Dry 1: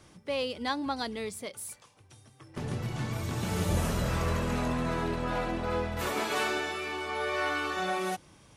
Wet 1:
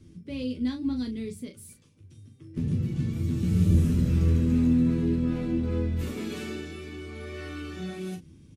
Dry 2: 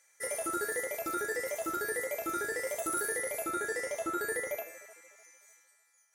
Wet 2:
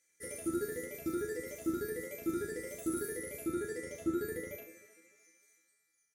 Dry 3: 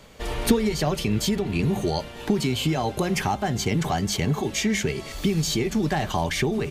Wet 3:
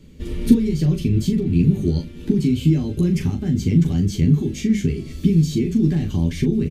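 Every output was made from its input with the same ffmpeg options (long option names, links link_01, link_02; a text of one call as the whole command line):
ffmpeg -i in.wav -af "firequalizer=gain_entry='entry(270,0);entry(690,-28);entry(2300,-16)':delay=0.05:min_phase=1,aecho=1:1:12|40:0.596|0.422,volume=6.5dB" out.wav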